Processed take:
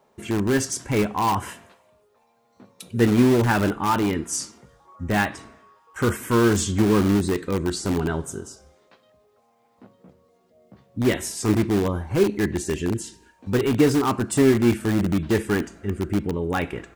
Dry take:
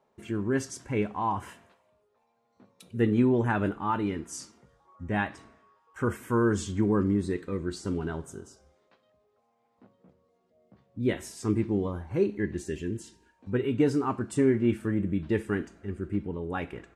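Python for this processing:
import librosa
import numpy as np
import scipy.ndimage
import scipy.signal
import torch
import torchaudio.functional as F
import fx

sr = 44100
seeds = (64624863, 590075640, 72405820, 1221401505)

p1 = fx.high_shelf(x, sr, hz=4800.0, db=6.0)
p2 = (np.mod(10.0 ** (24.0 / 20.0) * p1 + 1.0, 2.0) - 1.0) / 10.0 ** (24.0 / 20.0)
p3 = p1 + (p2 * librosa.db_to_amplitude(-9.5))
y = p3 * librosa.db_to_amplitude(6.0)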